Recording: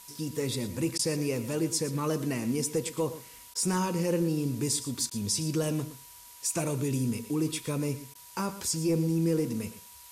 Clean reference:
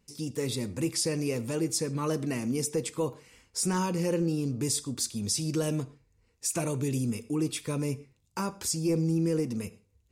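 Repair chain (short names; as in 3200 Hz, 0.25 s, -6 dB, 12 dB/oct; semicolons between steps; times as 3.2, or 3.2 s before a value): notch 970 Hz, Q 30; interpolate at 0.98/3.54/5.1/8.14, 10 ms; noise print and reduce 14 dB; inverse comb 0.115 s -14 dB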